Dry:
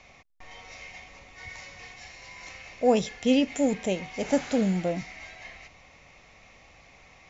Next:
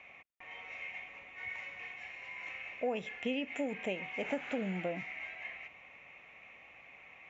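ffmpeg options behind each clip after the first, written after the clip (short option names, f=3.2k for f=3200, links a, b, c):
-af "highpass=f=280:p=1,highshelf=f=3.5k:t=q:w=3:g=-11,acompressor=threshold=-27dB:ratio=6,volume=-4.5dB"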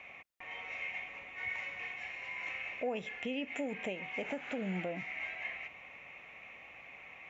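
-af "alimiter=level_in=6.5dB:limit=-24dB:level=0:latency=1:release=378,volume=-6.5dB,volume=3.5dB"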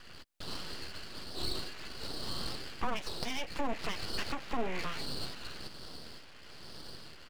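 -filter_complex "[0:a]acrossover=split=790[a][b];[a]aeval=exprs='val(0)*(1-0.7/2+0.7/2*cos(2*PI*1.1*n/s))':c=same[c];[b]aeval=exprs='val(0)*(1-0.7/2-0.7/2*cos(2*PI*1.1*n/s))':c=same[d];[c][d]amix=inputs=2:normalize=0,asplit=2[e][f];[f]adelay=13,volume=-8dB[g];[e][g]amix=inputs=2:normalize=0,aeval=exprs='abs(val(0))':c=same,volume=8dB"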